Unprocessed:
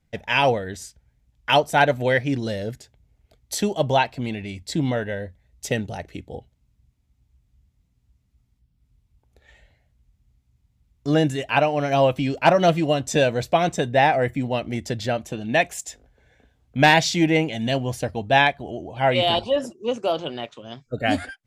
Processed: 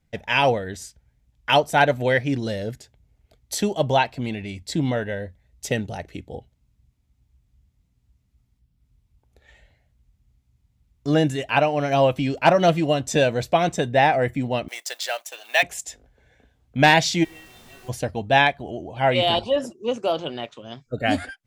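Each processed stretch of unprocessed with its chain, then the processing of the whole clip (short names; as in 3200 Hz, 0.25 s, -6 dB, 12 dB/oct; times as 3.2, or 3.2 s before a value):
14.68–15.63 G.711 law mismatch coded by A + HPF 580 Hz 24 dB/oct + tilt +3 dB/oct
17.23–17.88 metallic resonator 370 Hz, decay 0.57 s, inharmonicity 0.002 + added noise pink -50 dBFS
whole clip: dry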